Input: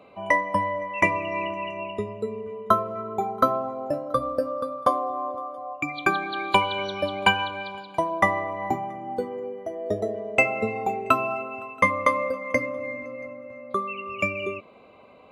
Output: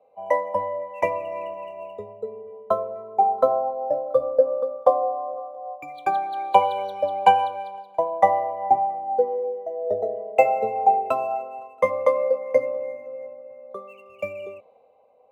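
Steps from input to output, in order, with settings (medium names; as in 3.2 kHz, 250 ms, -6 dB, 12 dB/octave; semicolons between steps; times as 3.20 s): median filter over 5 samples; high-order bell 650 Hz +14 dB 1.3 oct; small resonant body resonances 500/780 Hz, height 7 dB; three bands expanded up and down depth 40%; trim -11.5 dB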